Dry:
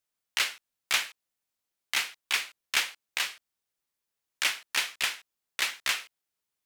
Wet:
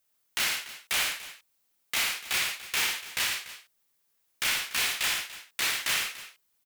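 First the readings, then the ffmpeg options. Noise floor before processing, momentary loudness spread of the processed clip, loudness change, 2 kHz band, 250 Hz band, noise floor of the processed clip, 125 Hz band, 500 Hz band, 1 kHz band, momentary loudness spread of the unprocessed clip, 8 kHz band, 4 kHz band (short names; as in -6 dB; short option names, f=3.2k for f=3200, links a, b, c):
under -85 dBFS, 12 LU, +1.5 dB, +1.0 dB, +7.0 dB, -73 dBFS, n/a, +3.5 dB, +1.5 dB, 6 LU, +4.0 dB, +1.5 dB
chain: -filter_complex "[0:a]highshelf=f=12k:g=9,asoftclip=type=hard:threshold=-31dB,asplit=2[a][b];[b]aecho=0:1:62|114|290:0.562|0.447|0.168[c];[a][c]amix=inputs=2:normalize=0,volume=6dB"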